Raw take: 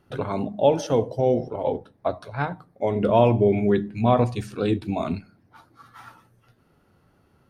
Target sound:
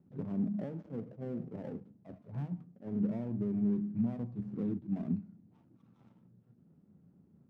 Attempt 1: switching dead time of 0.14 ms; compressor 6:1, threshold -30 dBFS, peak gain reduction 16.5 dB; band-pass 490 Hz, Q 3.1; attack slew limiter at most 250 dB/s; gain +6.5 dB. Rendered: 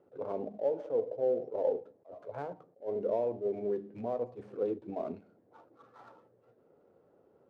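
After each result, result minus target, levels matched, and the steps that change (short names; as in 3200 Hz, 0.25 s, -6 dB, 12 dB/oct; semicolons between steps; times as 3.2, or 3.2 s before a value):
500 Hz band +12.0 dB; switching dead time: distortion -10 dB
change: band-pass 190 Hz, Q 3.1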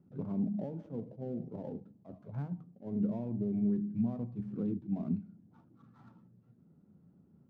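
switching dead time: distortion -10 dB
change: switching dead time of 0.31 ms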